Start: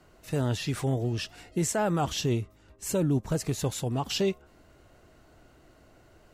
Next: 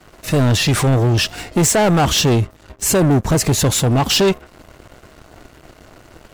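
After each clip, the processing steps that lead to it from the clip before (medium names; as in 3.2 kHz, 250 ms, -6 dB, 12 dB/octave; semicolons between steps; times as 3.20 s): waveshaping leveller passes 3; trim +8 dB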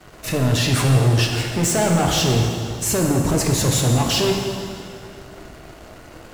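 peak limiter -17 dBFS, peak gain reduction 7.5 dB; plate-style reverb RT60 2.4 s, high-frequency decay 0.85×, DRR 0.5 dB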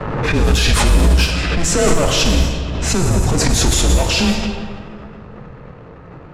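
frequency shift -180 Hz; level-controlled noise filter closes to 1.4 kHz, open at -12.5 dBFS; swell ahead of each attack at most 31 dB/s; trim +3.5 dB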